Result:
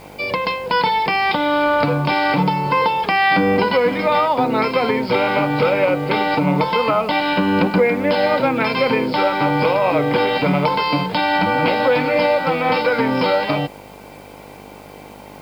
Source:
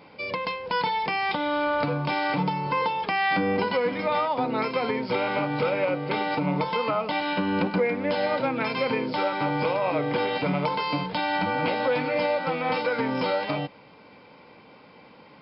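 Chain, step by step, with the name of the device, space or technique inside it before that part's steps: video cassette with head-switching buzz (mains buzz 50 Hz, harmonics 18, -50 dBFS 0 dB/octave; white noise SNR 35 dB); trim +8.5 dB

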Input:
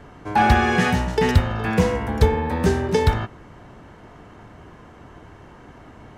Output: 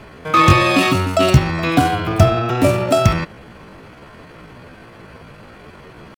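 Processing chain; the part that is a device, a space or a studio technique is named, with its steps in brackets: chipmunk voice (pitch shift +7 st); trim +4.5 dB

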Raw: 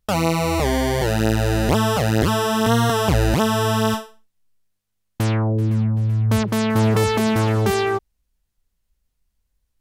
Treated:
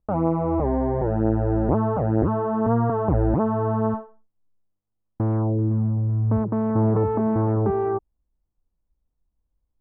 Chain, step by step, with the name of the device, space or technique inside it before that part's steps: under water (low-pass 1.1 kHz 24 dB/octave; peaking EQ 310 Hz +5.5 dB 0.3 oct); trim -3 dB

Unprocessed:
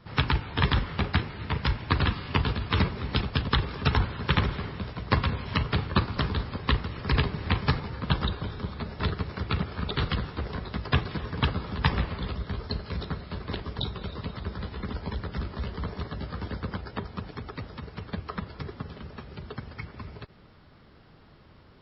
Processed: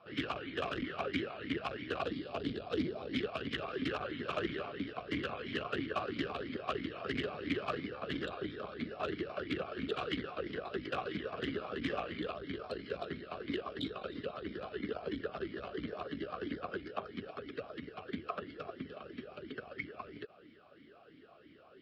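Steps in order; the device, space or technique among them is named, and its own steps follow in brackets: 2.02–3.13 s: high-order bell 1.8 kHz -9 dB; talk box (valve stage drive 29 dB, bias 0.6; talking filter a-i 3 Hz); trim +12.5 dB

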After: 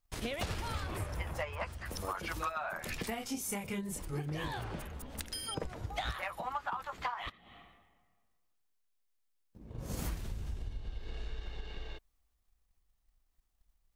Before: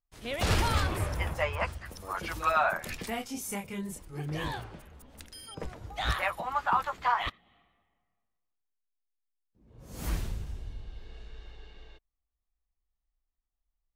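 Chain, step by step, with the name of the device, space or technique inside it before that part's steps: drum-bus smash (transient shaper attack +8 dB, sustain +4 dB; compression 8:1, threshold -40 dBFS, peak gain reduction 23 dB; saturation -30.5 dBFS, distortion -23 dB); trim +6 dB

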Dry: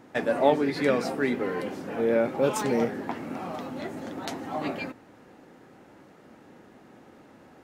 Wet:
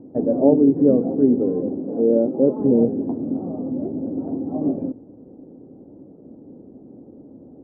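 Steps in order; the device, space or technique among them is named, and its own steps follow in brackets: under water (low-pass 520 Hz 24 dB/octave; peaking EQ 270 Hz +6 dB 0.28 oct); 1.79–2.60 s: high-pass 190 Hz 12 dB/octave; trim +8.5 dB

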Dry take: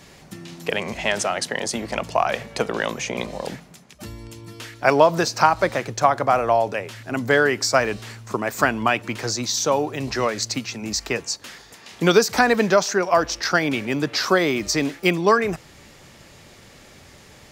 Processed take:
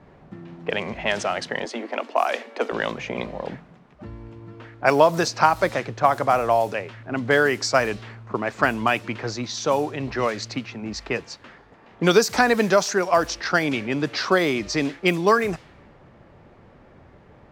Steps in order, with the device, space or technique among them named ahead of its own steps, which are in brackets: cassette deck with a dynamic noise filter (white noise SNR 25 dB; level-controlled noise filter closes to 1 kHz, open at -14.5 dBFS); 1.65–2.72 s: steep high-pass 230 Hz 96 dB/octave; trim -1 dB

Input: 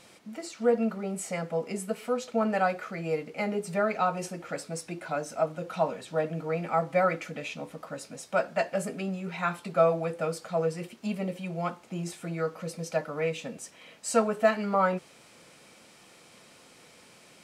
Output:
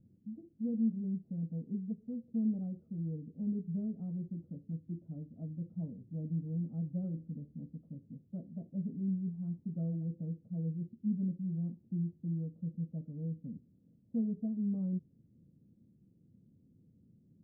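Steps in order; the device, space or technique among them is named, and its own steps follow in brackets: 6.97–7.61 s: flutter echo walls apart 10.5 m, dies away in 0.26 s; the neighbour's flat through the wall (low-pass 240 Hz 24 dB/octave; peaking EQ 100 Hz +6 dB 0.65 oct)

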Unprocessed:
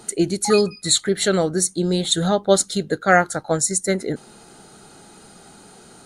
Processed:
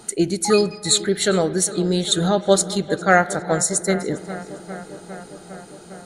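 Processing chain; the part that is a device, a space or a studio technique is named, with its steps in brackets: dub delay into a spring reverb (filtered feedback delay 404 ms, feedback 79%, low-pass 3.5 kHz, level -15.5 dB; spring tank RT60 1.9 s, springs 42 ms, chirp 70 ms, DRR 16.5 dB)

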